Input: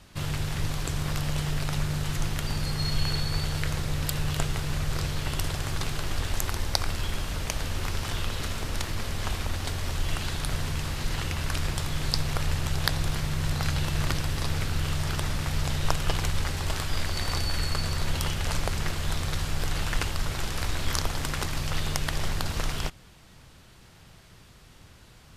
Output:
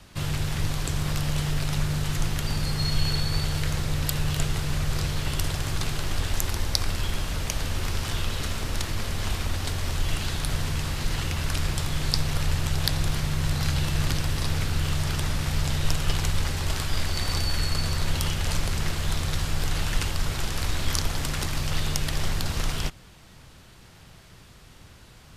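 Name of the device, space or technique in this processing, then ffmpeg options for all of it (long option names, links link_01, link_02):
one-band saturation: -filter_complex "[0:a]acrossover=split=260|2500[link_01][link_02][link_03];[link_02]asoftclip=type=tanh:threshold=-33dB[link_04];[link_01][link_04][link_03]amix=inputs=3:normalize=0,volume=2.5dB"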